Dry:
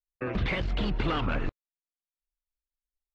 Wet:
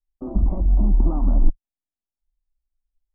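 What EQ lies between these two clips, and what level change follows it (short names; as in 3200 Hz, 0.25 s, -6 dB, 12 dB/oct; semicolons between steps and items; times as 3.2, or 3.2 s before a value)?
inverse Chebyshev low-pass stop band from 3400 Hz, stop band 60 dB; tilt -3.5 dB/oct; fixed phaser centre 460 Hz, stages 6; 0.0 dB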